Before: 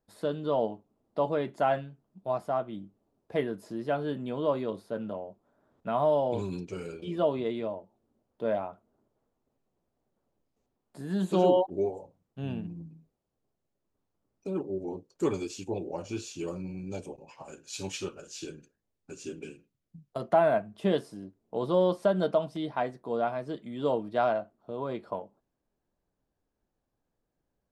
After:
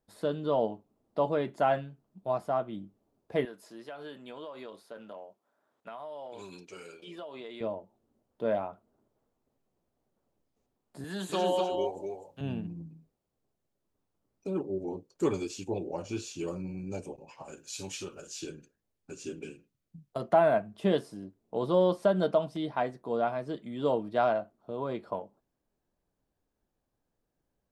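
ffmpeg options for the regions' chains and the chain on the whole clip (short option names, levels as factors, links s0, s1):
-filter_complex "[0:a]asettb=1/sr,asplit=3[s0][s1][s2];[s0]atrim=end=3.454[s3];[s1]atrim=start=3.45:end=7.61,asetpts=PTS-STARTPTS,afade=t=in:d=0.004:c=qsin,afade=t=out:st=4.156:d=0.004:c=qsin,highpass=f=1100:p=1,acompressor=threshold=0.0126:ratio=12:attack=3.2:release=140:knee=1:detection=peak[s4];[s2]atrim=start=7.606[s5];[s3][s4]acrossfade=d=0.004:c1=hsin:c2=qsin[s6];[s6][s5]acrossfade=d=0.004:c1=qsin:c2=hsin,asettb=1/sr,asplit=3[s7][s8][s9];[s7]atrim=end=11.044[s10];[s8]atrim=start=11.04:end=12.41,asetpts=PTS-STARTPTS,afade=t=in:d=0.004:c=qsin,afade=t=out:st=1.366:d=0.004:c=qsin,tiltshelf=f=790:g=-6,acrossover=split=200|440[s11][s12][s13];[s11]acompressor=threshold=0.00355:ratio=4[s14];[s12]acompressor=threshold=0.0178:ratio=4[s15];[s13]acompressor=threshold=0.0447:ratio=4[s16];[s14][s15][s16]amix=inputs=3:normalize=0,aecho=1:1:251:0.596,atrim=end_sample=60417[s17];[s9]atrim=start=12.406[s18];[s10][s17]acrossfade=d=0.004:c1=hsin:c2=qsin[s19];[s19][s18]acrossfade=d=0.004:c1=qsin:c2=hsin,asettb=1/sr,asplit=3[s20][s21][s22];[s20]atrim=end=16.554[s23];[s21]atrim=start=16.55:end=17.06,asetpts=PTS-STARTPTS,afade=t=in:d=0.004:c=qsin,afade=t=out:st=0.506:d=0.004:c=qsin,equalizer=f=3800:w=2.9:g=-5,bandreject=f=3300:w=5.7[s24];[s22]atrim=start=17.056[s25];[s23][s24]acrossfade=d=0.004:c1=hsin:c2=qsin[s26];[s26][s25]acrossfade=d=0.004:c1=qsin:c2=hsin,asettb=1/sr,asplit=3[s27][s28][s29];[s27]atrim=end=17.574[s30];[s28]atrim=start=17.57:end=18.41,asetpts=PTS-STARTPTS,afade=t=in:d=0.004:c=qsin,afade=t=out:st=0.836:d=0.004:c=qsin,highshelf=f=6300:g=6.5,acompressor=threshold=0.0126:ratio=2:attack=3.2:release=140:knee=1:detection=peak[s31];[s29]atrim=start=18.406[s32];[s30][s31]acrossfade=d=0.004:c1=hsin:c2=qsin[s33];[s33][s32]acrossfade=d=0.004:c1=qsin:c2=hsin"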